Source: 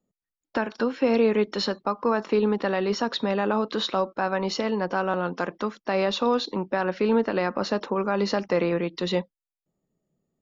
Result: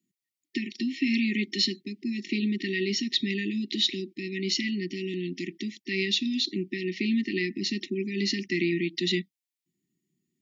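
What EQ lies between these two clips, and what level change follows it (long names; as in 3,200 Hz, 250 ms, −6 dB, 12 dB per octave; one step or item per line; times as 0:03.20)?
high-pass filter 120 Hz
linear-phase brick-wall band-stop 390–1,800 Hz
low-shelf EQ 320 Hz −7.5 dB
+4.5 dB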